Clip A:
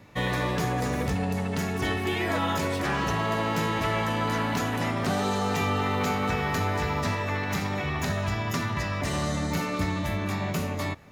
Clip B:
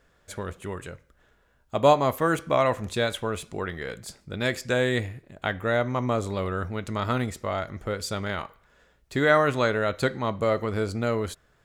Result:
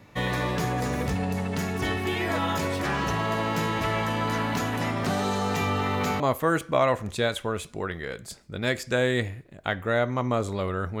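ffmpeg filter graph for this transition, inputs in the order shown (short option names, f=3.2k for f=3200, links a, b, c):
-filter_complex "[0:a]apad=whole_dur=11,atrim=end=11,atrim=end=6.202[a];[1:a]atrim=start=1.978:end=6.78[b];[a][b]acrossfade=d=0.004:c1=hsin:c2=hsin"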